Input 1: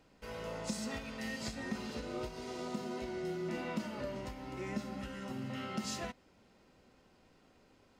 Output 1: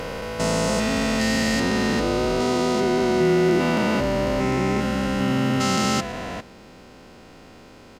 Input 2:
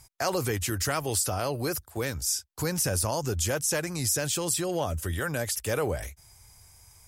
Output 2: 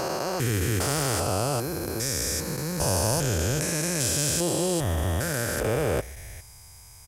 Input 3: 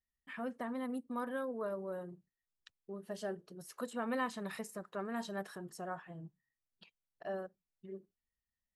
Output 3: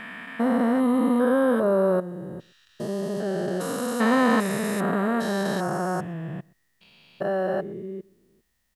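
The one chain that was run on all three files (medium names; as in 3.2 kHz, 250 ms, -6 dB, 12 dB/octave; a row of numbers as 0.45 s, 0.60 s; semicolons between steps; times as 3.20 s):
spectrogram pixelated in time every 400 ms; echo from a far wall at 21 m, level -25 dB; peak normalisation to -9 dBFS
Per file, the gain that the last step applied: +21.0 dB, +7.5 dB, +21.5 dB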